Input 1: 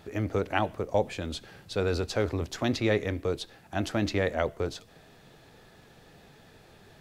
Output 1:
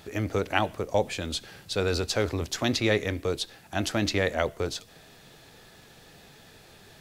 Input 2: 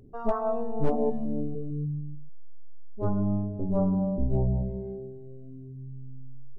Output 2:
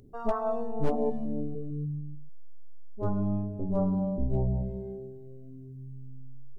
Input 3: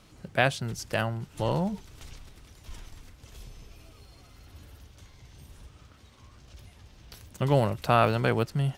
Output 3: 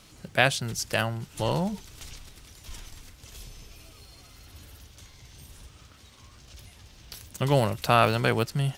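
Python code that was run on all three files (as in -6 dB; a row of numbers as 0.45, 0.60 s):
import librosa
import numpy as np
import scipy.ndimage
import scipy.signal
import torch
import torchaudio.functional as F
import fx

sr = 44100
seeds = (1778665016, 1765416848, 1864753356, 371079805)

y = fx.high_shelf(x, sr, hz=2400.0, db=8.5)
y = y * 10.0 ** (-30 / 20.0) / np.sqrt(np.mean(np.square(y)))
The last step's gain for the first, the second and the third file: +0.5, -2.5, 0.0 dB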